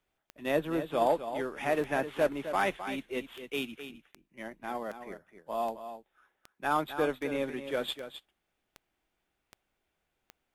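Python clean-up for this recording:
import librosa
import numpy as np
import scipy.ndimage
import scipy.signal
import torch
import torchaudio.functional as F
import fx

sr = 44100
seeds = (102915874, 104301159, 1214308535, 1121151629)

y = fx.fix_declick_ar(x, sr, threshold=10.0)
y = fx.fix_echo_inverse(y, sr, delay_ms=260, level_db=-10.5)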